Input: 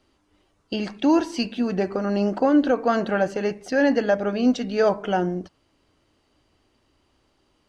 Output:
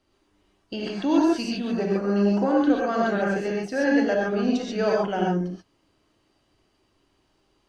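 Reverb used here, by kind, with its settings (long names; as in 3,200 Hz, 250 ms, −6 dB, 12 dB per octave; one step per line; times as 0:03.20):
reverb whose tail is shaped and stops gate 160 ms rising, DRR −3 dB
level −6 dB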